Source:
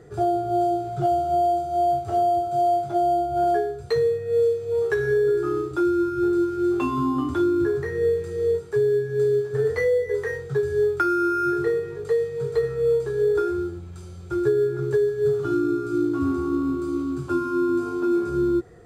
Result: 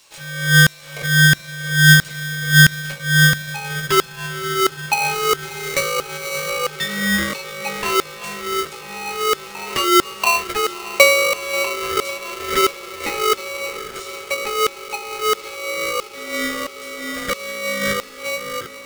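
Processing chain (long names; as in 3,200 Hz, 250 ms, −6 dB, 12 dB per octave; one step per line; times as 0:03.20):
0:12.49–0:13.57: parametric band 1,200 Hz +11.5 dB 0.49 octaves
in parallel at 0 dB: compressor whose output falls as the input rises −31 dBFS, ratio −1
on the sum: auto-filter high-pass saw down 1.5 Hz 530–4,200 Hz
on a send: feedback delay with all-pass diffusion 628 ms, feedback 75%, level −15.5 dB
0:05.14–0:06.50: on the sum: sample-rate reduction 6,600 Hz, jitter 0%
ring modulator with a square carrier 850 Hz
level +4 dB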